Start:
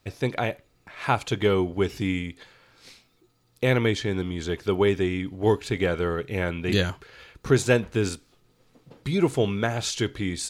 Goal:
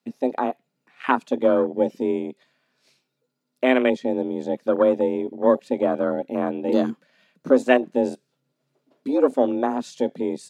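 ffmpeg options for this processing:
ffmpeg -i in.wav -af "afreqshift=130,afwtdn=0.0501,volume=3.5dB" out.wav

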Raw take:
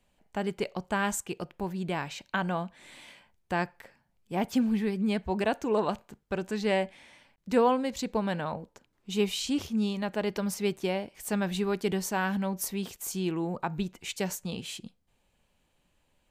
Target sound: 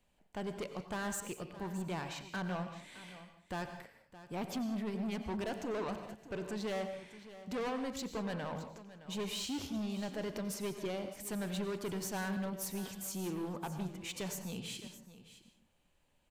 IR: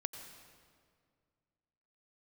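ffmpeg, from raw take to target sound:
-filter_complex "[0:a]asoftclip=type=tanh:threshold=-30.5dB,aecho=1:1:617:0.178[link_01];[1:a]atrim=start_sample=2205,afade=type=out:start_time=0.26:duration=0.01,atrim=end_sample=11907[link_02];[link_01][link_02]afir=irnorm=-1:irlink=0,volume=-2.5dB"

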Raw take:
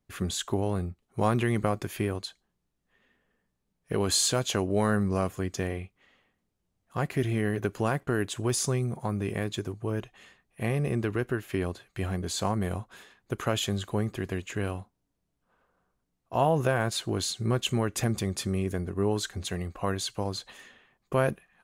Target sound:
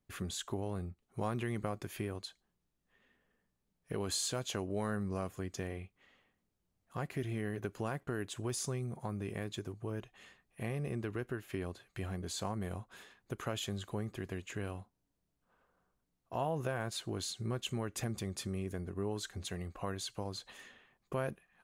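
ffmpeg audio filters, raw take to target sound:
ffmpeg -i in.wav -af "acompressor=threshold=-42dB:ratio=1.5,volume=-3.5dB" out.wav

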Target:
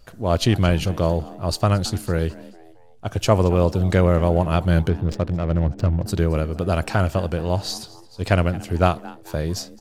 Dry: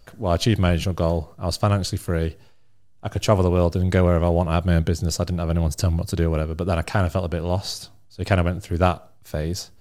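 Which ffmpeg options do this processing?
ffmpeg -i in.wav -filter_complex "[0:a]asettb=1/sr,asplit=3[link_01][link_02][link_03];[link_01]atrim=end=4.894[link_04];[link_02]atrim=start=4.89:end=6.06,asetpts=PTS-STARTPTS,afade=type=in:duration=0.004:curve=qsin,afade=type=out:start_time=1.166:duration=0.004:curve=qsin,adynamicsmooth=sensitivity=2.5:basefreq=650[link_05];[link_03]atrim=start=6.056[link_06];[link_04][link_05]acrossfade=duration=0.004:curve1=hsin:curve2=qsin[link_07];[link_07][link_06]acrossfade=duration=0.004:curve1=qsin:curve2=hsin,asplit=4[link_08][link_09][link_10][link_11];[link_09]adelay=222,afreqshift=120,volume=-20dB[link_12];[link_10]adelay=444,afreqshift=240,volume=-27.5dB[link_13];[link_11]adelay=666,afreqshift=360,volume=-35.1dB[link_14];[link_08][link_12][link_13][link_14]amix=inputs=4:normalize=0,volume=1dB" out.wav

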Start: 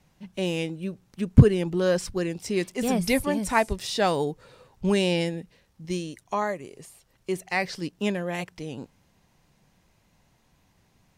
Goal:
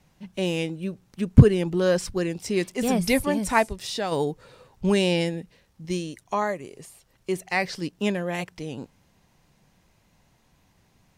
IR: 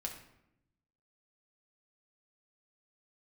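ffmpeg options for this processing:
-filter_complex "[0:a]asplit=3[link_01][link_02][link_03];[link_01]afade=type=out:start_time=3.67:duration=0.02[link_04];[link_02]acompressor=threshold=-32dB:ratio=2,afade=type=in:start_time=3.67:duration=0.02,afade=type=out:start_time=4.11:duration=0.02[link_05];[link_03]afade=type=in:start_time=4.11:duration=0.02[link_06];[link_04][link_05][link_06]amix=inputs=3:normalize=0,volume=1.5dB"

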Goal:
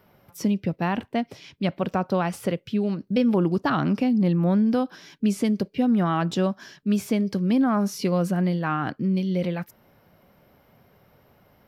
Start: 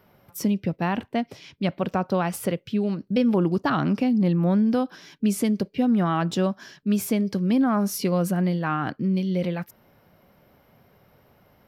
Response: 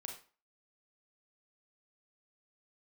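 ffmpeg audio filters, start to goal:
-filter_complex "[0:a]acrossover=split=7000[link_01][link_02];[link_02]acompressor=threshold=-43dB:ratio=4:attack=1:release=60[link_03];[link_01][link_03]amix=inputs=2:normalize=0" -ar 44100 -c:a aac -b:a 192k

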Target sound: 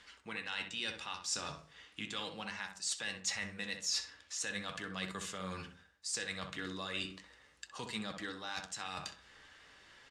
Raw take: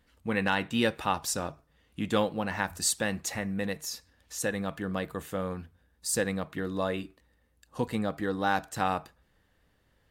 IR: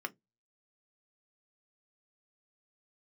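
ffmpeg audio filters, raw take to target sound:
-filter_complex "[0:a]tiltshelf=frequency=970:gain=-8.5,bandreject=frequency=1800:width=22,areverse,acompressor=threshold=-40dB:ratio=10,areverse,lowshelf=frequency=93:gain=-5,acrossover=split=200|3000[link_01][link_02][link_03];[link_02]acompressor=threshold=-56dB:ratio=3[link_04];[link_01][link_04][link_03]amix=inputs=3:normalize=0,asplit=2[link_05][link_06];[link_06]adelay=64,lowpass=frequency=1500:poles=1,volume=-5.5dB,asplit=2[link_07][link_08];[link_08]adelay=64,lowpass=frequency=1500:poles=1,volume=0.37,asplit=2[link_09][link_10];[link_10]adelay=64,lowpass=frequency=1500:poles=1,volume=0.37,asplit=2[link_11][link_12];[link_12]adelay=64,lowpass=frequency=1500:poles=1,volume=0.37[link_13];[link_05][link_07][link_09][link_11][link_13]amix=inputs=5:normalize=0,flanger=delay=4.8:depth=9.3:regen=67:speed=0.38:shape=sinusoidal,asoftclip=type=tanh:threshold=-35.5dB,lowpass=frequency=7500:width=0.5412,lowpass=frequency=7500:width=1.3066,asplit=2[link_14][link_15];[1:a]atrim=start_sample=2205[link_16];[link_15][link_16]afir=irnorm=-1:irlink=0,volume=-5.5dB[link_17];[link_14][link_17]amix=inputs=2:normalize=0,volume=11dB"

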